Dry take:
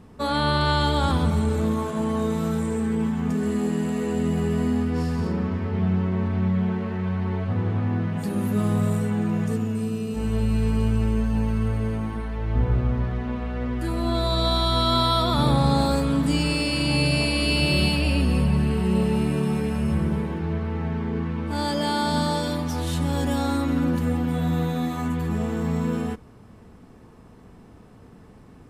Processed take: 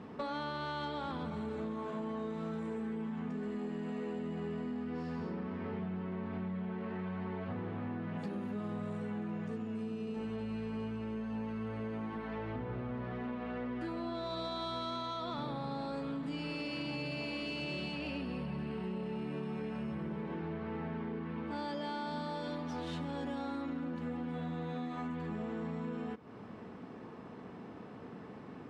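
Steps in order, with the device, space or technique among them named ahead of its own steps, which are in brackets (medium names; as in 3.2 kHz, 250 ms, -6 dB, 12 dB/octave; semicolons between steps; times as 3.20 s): AM radio (band-pass 190–3400 Hz; compression 8:1, threshold -39 dBFS, peak gain reduction 19.5 dB; saturation -31 dBFS, distortion -26 dB); trim +3 dB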